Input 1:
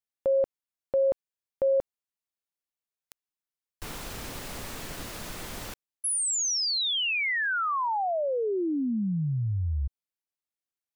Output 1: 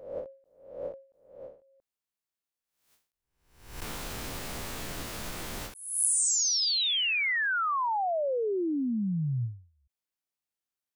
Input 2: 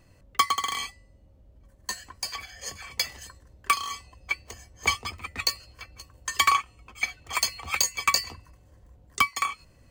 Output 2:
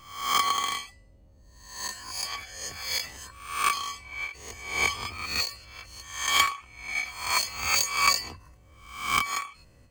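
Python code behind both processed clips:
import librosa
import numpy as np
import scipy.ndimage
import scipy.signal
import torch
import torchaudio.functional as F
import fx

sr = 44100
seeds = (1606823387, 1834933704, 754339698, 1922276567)

y = fx.spec_swells(x, sr, rise_s=0.64)
y = fx.end_taper(y, sr, db_per_s=140.0)
y = y * 10.0 ** (-1.5 / 20.0)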